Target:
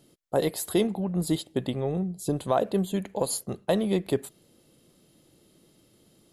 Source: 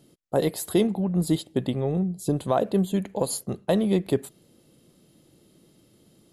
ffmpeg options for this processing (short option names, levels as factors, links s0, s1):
-af "equalizer=f=170:t=o:w=2.5:g=-4"